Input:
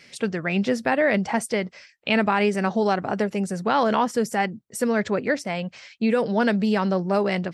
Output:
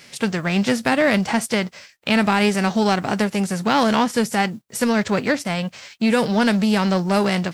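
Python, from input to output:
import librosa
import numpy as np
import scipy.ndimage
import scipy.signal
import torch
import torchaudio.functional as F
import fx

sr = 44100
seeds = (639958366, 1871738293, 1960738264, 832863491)

p1 = fx.envelope_flatten(x, sr, power=0.6)
p2 = np.clip(p1, -10.0 ** (-24.0 / 20.0), 10.0 ** (-24.0 / 20.0))
p3 = p1 + (p2 * 10.0 ** (-7.0 / 20.0))
y = p3 * 10.0 ** (1.5 / 20.0)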